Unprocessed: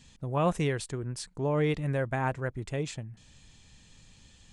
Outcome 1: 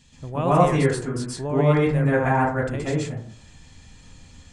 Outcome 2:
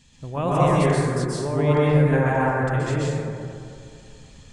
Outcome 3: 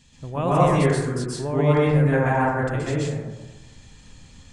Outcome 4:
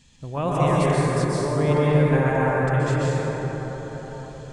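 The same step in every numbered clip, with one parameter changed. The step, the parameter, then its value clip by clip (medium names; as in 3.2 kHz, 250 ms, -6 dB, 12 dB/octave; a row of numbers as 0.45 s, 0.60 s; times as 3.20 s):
plate-style reverb, RT60: 0.5 s, 2.4 s, 1.2 s, 5.3 s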